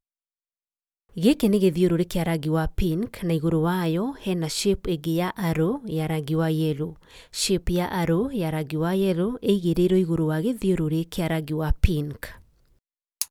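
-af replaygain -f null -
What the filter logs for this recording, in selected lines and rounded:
track_gain = +5.4 dB
track_peak = 0.380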